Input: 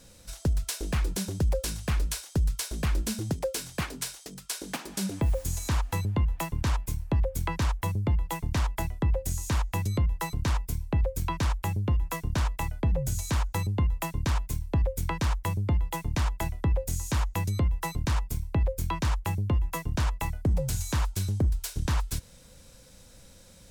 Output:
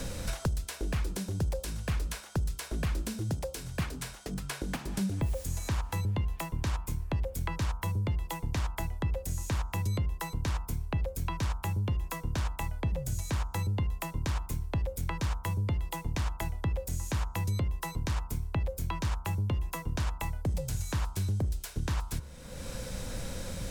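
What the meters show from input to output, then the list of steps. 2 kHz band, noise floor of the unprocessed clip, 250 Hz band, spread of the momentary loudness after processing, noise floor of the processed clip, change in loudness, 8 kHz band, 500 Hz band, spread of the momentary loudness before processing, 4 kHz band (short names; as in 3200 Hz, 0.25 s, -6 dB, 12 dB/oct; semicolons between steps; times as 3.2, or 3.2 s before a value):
-3.0 dB, -52 dBFS, -3.5 dB, 4 LU, -46 dBFS, -4.0 dB, -5.5 dB, -4.5 dB, 3 LU, -4.0 dB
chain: de-hum 70.07 Hz, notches 22; three-band squash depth 100%; gain -5 dB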